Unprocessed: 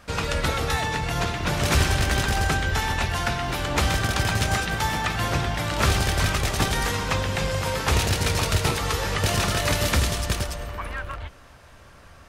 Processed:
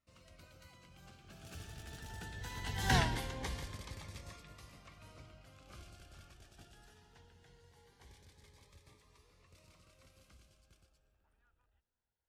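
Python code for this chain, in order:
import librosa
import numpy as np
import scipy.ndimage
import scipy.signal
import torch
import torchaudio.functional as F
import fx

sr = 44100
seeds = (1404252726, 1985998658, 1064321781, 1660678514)

y = fx.doppler_pass(x, sr, speed_mps=39, closest_m=2.0, pass_at_s=2.98)
y = fx.notch_cascade(y, sr, direction='rising', hz=0.21)
y = y * librosa.db_to_amplitude(1.0)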